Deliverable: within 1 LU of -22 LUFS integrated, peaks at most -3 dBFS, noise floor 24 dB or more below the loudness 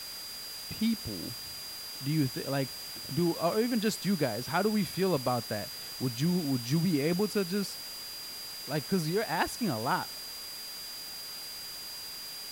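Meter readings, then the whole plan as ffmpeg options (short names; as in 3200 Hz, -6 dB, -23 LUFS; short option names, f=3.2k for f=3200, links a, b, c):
steady tone 4800 Hz; tone level -41 dBFS; noise floor -42 dBFS; noise floor target -56 dBFS; loudness -32.0 LUFS; peak -14.0 dBFS; loudness target -22.0 LUFS
-> -af "bandreject=f=4.8k:w=30"
-af "afftdn=nr=14:nf=-42"
-af "volume=10dB"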